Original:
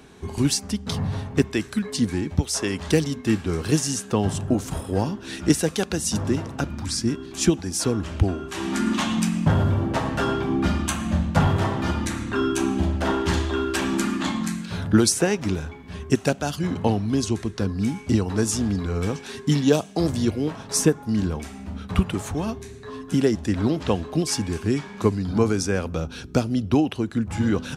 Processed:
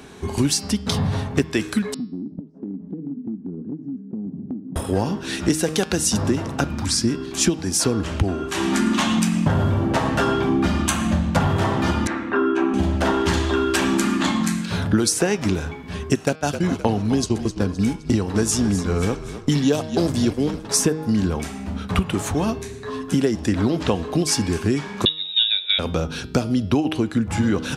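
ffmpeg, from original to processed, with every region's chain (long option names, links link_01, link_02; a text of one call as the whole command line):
ffmpeg -i in.wav -filter_complex "[0:a]asettb=1/sr,asplit=3[link_01][link_02][link_03];[link_01]atrim=end=1.944[link_04];[link_02]atrim=start=1.94:end=4.76,asetpts=PTS-STARTPTS,afade=type=in:duration=0.004:curve=qsin,afade=type=out:start_time=2.816:duration=0.004:curve=qsin,asuperpass=centerf=230:order=4:qfactor=2,acompressor=threshold=-32dB:ratio=6:attack=3.2:release=140:knee=1:detection=peak[link_05];[link_03]atrim=start=4.756[link_06];[link_04][link_05]acrossfade=duration=0.004:curve1=hsin:curve2=qsin[link_07];[link_07][link_06]acrossfade=duration=0.004:curve1=qsin:curve2=hsin,asettb=1/sr,asplit=3[link_08][link_09][link_10];[link_08]atrim=end=12.074[link_11];[link_09]atrim=start=12.07:end=12.74,asetpts=PTS-STARTPTS,afade=type=in:duration=0.004:curve=qsin,afade=type=out:start_time=0.666:duration=0.004:curve=qsin,lowpass=6600,acrossover=split=230 2500:gain=0.126 1 0.0794[link_12][link_13][link_14];[link_12][link_13][link_14]amix=inputs=3:normalize=0,asplit=2[link_15][link_16];[link_16]adelay=12,volume=-11dB[link_17];[link_15][link_17]amix=inputs=2:normalize=0,atrim=end_sample=29547[link_18];[link_10]atrim=start=12.736[link_19];[link_11][link_18]acrossfade=duration=0.004:curve1=hsin:curve2=qsin[link_20];[link_20][link_19]acrossfade=duration=0.004:curve1=qsin:curve2=hsin,asettb=1/sr,asplit=3[link_21][link_22][link_23];[link_21]atrim=end=16.254[link_24];[link_22]atrim=start=16.25:end=20.65,asetpts=PTS-STARTPTS,afade=type=in:duration=0.004:curve=qsin,afade=type=out:start_time=4.396:duration=0.004:curve=qsin,agate=range=-17dB:threshold=-28dB:ratio=16:release=100:detection=peak,asplit=5[link_25][link_26][link_27][link_28][link_29];[link_26]adelay=259,afreqshift=-41,volume=-13.5dB[link_30];[link_27]adelay=518,afreqshift=-82,volume=-21.7dB[link_31];[link_28]adelay=777,afreqshift=-123,volume=-29.9dB[link_32];[link_29]adelay=1036,afreqshift=-164,volume=-38dB[link_33];[link_25][link_30][link_31][link_32][link_33]amix=inputs=5:normalize=0,atrim=end_sample=194040[link_34];[link_23]atrim=start=20.646[link_35];[link_24][link_34]acrossfade=duration=0.004:curve1=hsin:curve2=qsin[link_36];[link_36][link_35]acrossfade=duration=0.004:curve1=qsin:curve2=hsin,asettb=1/sr,asplit=3[link_37][link_38][link_39];[link_37]atrim=end=25.054[link_40];[link_38]atrim=start=25.05:end=25.79,asetpts=PTS-STARTPTS,afade=type=in:duration=0.004:curve=qsin,afade=type=out:start_time=0.736:duration=0.004:curve=qsin,bandreject=frequency=2700:width=6.2,lowpass=frequency=3300:width_type=q:width=0.5098,lowpass=frequency=3300:width_type=q:width=0.6013,lowpass=frequency=3300:width_type=q:width=0.9,lowpass=frequency=3300:width_type=q:width=2.563,afreqshift=-3900,agate=range=-11dB:threshold=-24dB:ratio=16:release=100:detection=peak[link_41];[link_39]atrim=start=25.786[link_42];[link_40][link_41]acrossfade=duration=0.004:curve1=hsin:curve2=qsin[link_43];[link_43][link_42]acrossfade=duration=0.004:curve1=qsin:curve2=hsin,lowshelf=frequency=110:gain=-4.5,bandreject=frequency=156.9:width_type=h:width=4,bandreject=frequency=313.8:width_type=h:width=4,bandreject=frequency=470.7:width_type=h:width=4,bandreject=frequency=627.6:width_type=h:width=4,bandreject=frequency=784.5:width_type=h:width=4,bandreject=frequency=941.4:width_type=h:width=4,bandreject=frequency=1098.3:width_type=h:width=4,bandreject=frequency=1255.2:width_type=h:width=4,bandreject=frequency=1412.1:width_type=h:width=4,bandreject=frequency=1569:width_type=h:width=4,bandreject=frequency=1725.9:width_type=h:width=4,bandreject=frequency=1882.8:width_type=h:width=4,bandreject=frequency=2039.7:width_type=h:width=4,bandreject=frequency=2196.6:width_type=h:width=4,bandreject=frequency=2353.5:width_type=h:width=4,bandreject=frequency=2510.4:width_type=h:width=4,bandreject=frequency=2667.3:width_type=h:width=4,bandreject=frequency=2824.2:width_type=h:width=4,bandreject=frequency=2981.1:width_type=h:width=4,bandreject=frequency=3138:width_type=h:width=4,bandreject=frequency=3294.9:width_type=h:width=4,bandreject=frequency=3451.8:width_type=h:width=4,bandreject=frequency=3608.7:width_type=h:width=4,bandreject=frequency=3765.6:width_type=h:width=4,bandreject=frequency=3922.5:width_type=h:width=4,bandreject=frequency=4079.4:width_type=h:width=4,bandreject=frequency=4236.3:width_type=h:width=4,bandreject=frequency=4393.2:width_type=h:width=4,bandreject=frequency=4550.1:width_type=h:width=4,bandreject=frequency=4707:width_type=h:width=4,bandreject=frequency=4863.9:width_type=h:width=4,bandreject=frequency=5020.8:width_type=h:width=4,bandreject=frequency=5177.7:width_type=h:width=4,bandreject=frequency=5334.6:width_type=h:width=4,bandreject=frequency=5491.5:width_type=h:width=4,acompressor=threshold=-23dB:ratio=4,volume=7dB" out.wav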